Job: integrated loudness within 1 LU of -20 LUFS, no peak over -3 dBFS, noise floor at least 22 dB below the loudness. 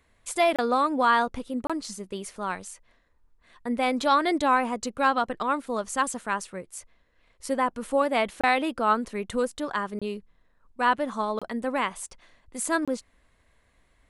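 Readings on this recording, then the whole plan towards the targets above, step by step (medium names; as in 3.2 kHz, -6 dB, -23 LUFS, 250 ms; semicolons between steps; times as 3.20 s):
dropouts 6; longest dropout 26 ms; loudness -26.5 LUFS; peak level -10.5 dBFS; loudness target -20.0 LUFS
-> interpolate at 0.56/1.67/8.41/9.99/11.39/12.85 s, 26 ms; trim +6.5 dB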